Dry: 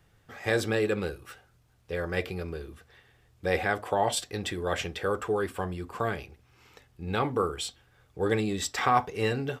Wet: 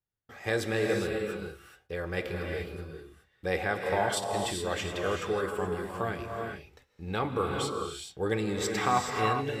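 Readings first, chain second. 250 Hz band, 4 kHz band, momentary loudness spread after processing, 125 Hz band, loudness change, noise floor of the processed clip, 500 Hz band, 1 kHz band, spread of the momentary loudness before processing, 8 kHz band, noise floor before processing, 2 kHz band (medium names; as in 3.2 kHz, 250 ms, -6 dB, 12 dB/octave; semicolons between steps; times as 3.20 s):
-1.0 dB, -1.0 dB, 12 LU, -1.5 dB, -1.5 dB, -70 dBFS, -1.0 dB, -1.0 dB, 12 LU, -1.0 dB, -64 dBFS, -1.0 dB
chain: gate -55 dBFS, range -28 dB; gated-style reverb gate 450 ms rising, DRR 2 dB; trim -3 dB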